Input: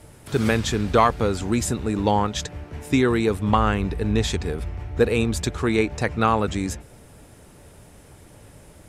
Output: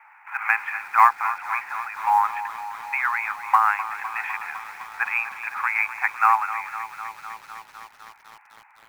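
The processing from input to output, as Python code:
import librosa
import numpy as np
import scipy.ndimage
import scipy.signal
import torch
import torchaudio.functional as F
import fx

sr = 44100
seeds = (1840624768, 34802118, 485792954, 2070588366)

p1 = scipy.signal.sosfilt(scipy.signal.cheby1(5, 1.0, [800.0, 2500.0], 'bandpass', fs=sr, output='sos'), x)
p2 = fx.rider(p1, sr, range_db=3, speed_s=0.5)
p3 = p1 + (p2 * librosa.db_to_amplitude(1.0))
p4 = fx.quant_float(p3, sr, bits=4)
y = fx.echo_crushed(p4, sr, ms=253, feedback_pct=80, bits=7, wet_db=-13)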